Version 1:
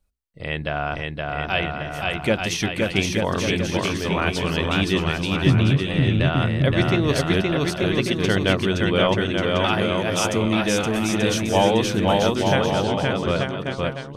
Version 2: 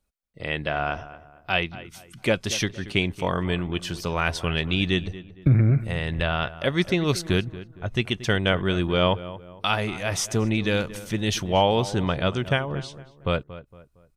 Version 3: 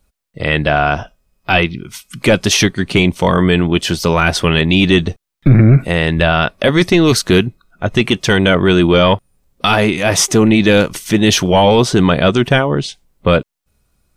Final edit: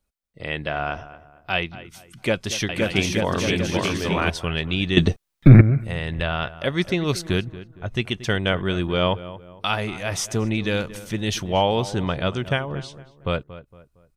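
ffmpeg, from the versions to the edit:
-filter_complex "[1:a]asplit=3[a][b][c];[a]atrim=end=2.692[d];[0:a]atrim=start=2.688:end=4.302[e];[b]atrim=start=4.298:end=4.972[f];[2:a]atrim=start=4.968:end=5.612[g];[c]atrim=start=5.608[h];[d][e]acrossfade=d=0.004:c1=hsin:c2=hsin[i];[i][f]acrossfade=d=0.004:c1=hsin:c2=hsin[j];[j][g]acrossfade=d=0.004:c1=hsin:c2=hsin[k];[k][h]acrossfade=d=0.004:c1=hsin:c2=hsin"

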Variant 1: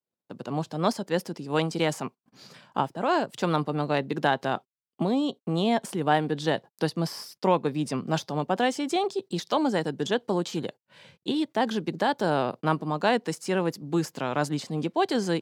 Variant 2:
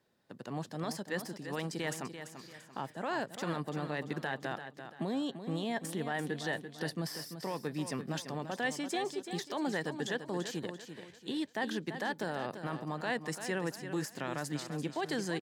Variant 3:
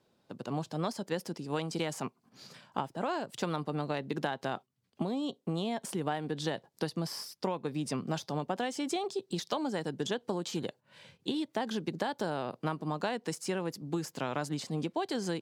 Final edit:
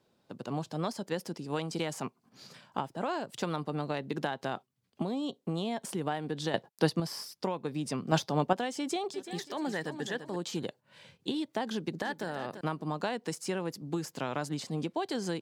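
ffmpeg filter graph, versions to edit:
-filter_complex "[0:a]asplit=2[a][b];[1:a]asplit=2[c][d];[2:a]asplit=5[e][f][g][h][i];[e]atrim=end=6.542[j];[a]atrim=start=6.538:end=7.002[k];[f]atrim=start=6.998:end=8.122[l];[b]atrim=start=8.118:end=8.532[m];[g]atrim=start=8.528:end=9.142[n];[c]atrim=start=9.138:end=10.362[o];[h]atrim=start=10.358:end=12.022[p];[d]atrim=start=12.018:end=12.612[q];[i]atrim=start=12.608[r];[j][k]acrossfade=d=0.004:c1=hsin:c2=hsin[s];[s][l]acrossfade=d=0.004:c1=hsin:c2=hsin[t];[t][m]acrossfade=d=0.004:c1=hsin:c2=hsin[u];[u][n]acrossfade=d=0.004:c1=hsin:c2=hsin[v];[v][o]acrossfade=d=0.004:c1=hsin:c2=hsin[w];[w][p]acrossfade=d=0.004:c1=hsin:c2=hsin[x];[x][q]acrossfade=d=0.004:c1=hsin:c2=hsin[y];[y][r]acrossfade=d=0.004:c1=hsin:c2=hsin"

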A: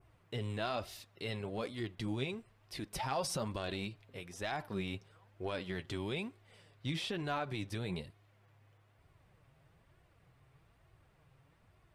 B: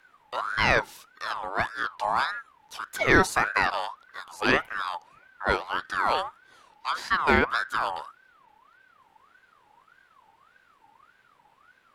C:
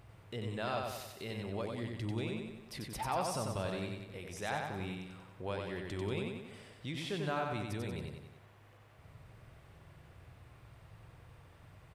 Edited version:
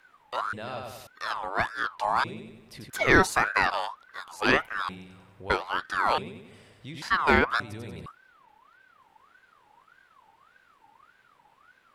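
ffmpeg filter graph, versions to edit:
-filter_complex "[2:a]asplit=5[a][b][c][d][e];[1:a]asplit=6[f][g][h][i][j][k];[f]atrim=end=0.532[l];[a]atrim=start=0.528:end=1.072[m];[g]atrim=start=1.068:end=2.242[n];[b]atrim=start=2.238:end=2.902[o];[h]atrim=start=2.898:end=4.892[p];[c]atrim=start=4.888:end=5.502[q];[i]atrim=start=5.498:end=6.182[r];[d]atrim=start=6.178:end=7.022[s];[j]atrim=start=7.018:end=7.602[t];[e]atrim=start=7.598:end=8.062[u];[k]atrim=start=8.058[v];[l][m]acrossfade=d=0.004:c1=hsin:c2=hsin[w];[w][n]acrossfade=d=0.004:c1=hsin:c2=hsin[x];[x][o]acrossfade=d=0.004:c1=hsin:c2=hsin[y];[y][p]acrossfade=d=0.004:c1=hsin:c2=hsin[z];[z][q]acrossfade=d=0.004:c1=hsin:c2=hsin[aa];[aa][r]acrossfade=d=0.004:c1=hsin:c2=hsin[ab];[ab][s]acrossfade=d=0.004:c1=hsin:c2=hsin[ac];[ac][t]acrossfade=d=0.004:c1=hsin:c2=hsin[ad];[ad][u]acrossfade=d=0.004:c1=hsin:c2=hsin[ae];[ae][v]acrossfade=d=0.004:c1=hsin:c2=hsin"

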